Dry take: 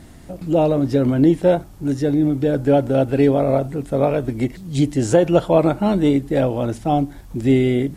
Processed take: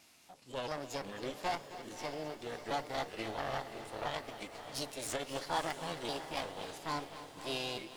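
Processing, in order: pitch shift switched off and on -4 st, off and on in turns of 338 ms; low-pass 4 kHz 12 dB/octave; differentiator; Chebyshev shaper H 8 -20 dB, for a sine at -23.5 dBFS; formant shift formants +5 st; echo that smears into a reverb 606 ms, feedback 42%, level -11 dB; bit-crushed delay 266 ms, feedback 80%, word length 10-bit, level -14 dB; trim +1.5 dB

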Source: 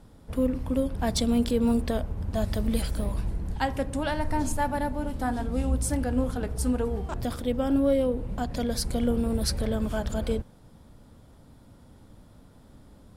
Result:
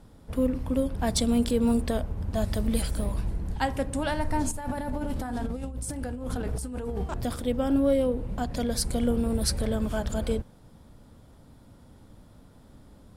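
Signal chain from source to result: dynamic bell 8.7 kHz, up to +5 dB, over -53 dBFS, Q 1.8; 4.51–7.04 s: compressor with a negative ratio -32 dBFS, ratio -1

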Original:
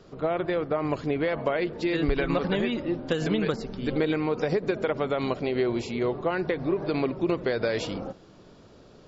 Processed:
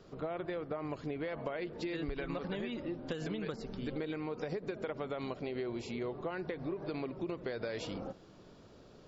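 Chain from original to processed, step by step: compression 3:1, threshold -32 dBFS, peak gain reduction 10 dB; trim -5 dB

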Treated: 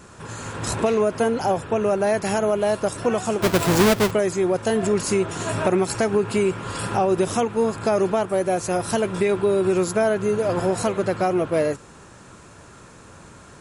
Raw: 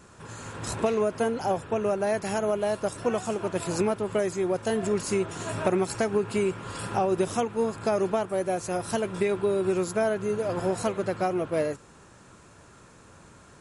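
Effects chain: 3.42–4.11 s: square wave that keeps the level; in parallel at +1.5 dB: peak limiter -20.5 dBFS, peak gain reduction 8 dB

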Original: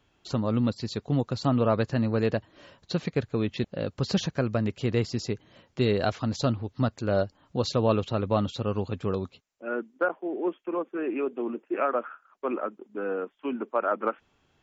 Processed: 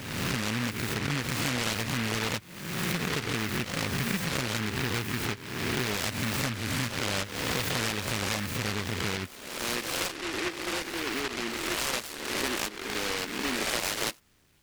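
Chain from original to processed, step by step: reverse spectral sustain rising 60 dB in 1.09 s; 9.80–11.87 s: flange 1.9 Hz, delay 7.8 ms, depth 4.8 ms, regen -70%; compression 5:1, threshold -27 dBFS, peak gain reduction 11 dB; delay time shaken by noise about 1.8 kHz, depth 0.42 ms

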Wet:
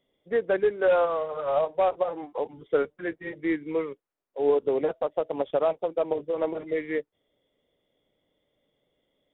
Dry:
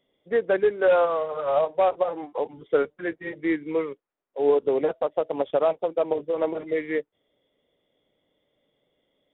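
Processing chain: bass shelf 92 Hz +6 dB; trim -2.5 dB

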